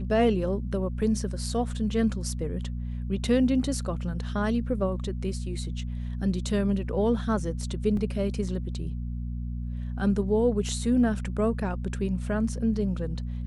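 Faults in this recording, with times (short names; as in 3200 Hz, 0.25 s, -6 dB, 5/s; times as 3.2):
hum 60 Hz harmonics 4 -32 dBFS
7.97 gap 2.5 ms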